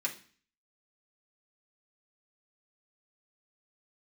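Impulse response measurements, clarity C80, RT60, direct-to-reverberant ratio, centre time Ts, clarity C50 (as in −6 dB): 17.5 dB, 0.40 s, −3.5 dB, 12 ms, 12.0 dB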